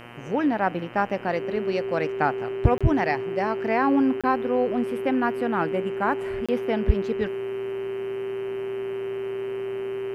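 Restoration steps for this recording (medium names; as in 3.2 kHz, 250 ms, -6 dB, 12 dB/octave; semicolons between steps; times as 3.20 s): de-hum 119.3 Hz, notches 26; band-stop 390 Hz, Q 30; interpolate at 2.78/4.21/6.46 s, 26 ms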